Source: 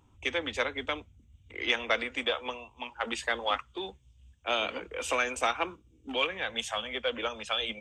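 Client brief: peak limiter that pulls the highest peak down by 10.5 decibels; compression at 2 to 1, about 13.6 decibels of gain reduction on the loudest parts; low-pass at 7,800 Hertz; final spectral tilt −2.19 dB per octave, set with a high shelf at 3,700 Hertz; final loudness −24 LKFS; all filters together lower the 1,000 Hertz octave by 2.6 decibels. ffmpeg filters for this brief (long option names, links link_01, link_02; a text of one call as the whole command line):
ffmpeg -i in.wav -af "lowpass=7800,equalizer=frequency=1000:width_type=o:gain=-4,highshelf=frequency=3700:gain=4,acompressor=threshold=-49dB:ratio=2,volume=22.5dB,alimiter=limit=-12dB:level=0:latency=1" out.wav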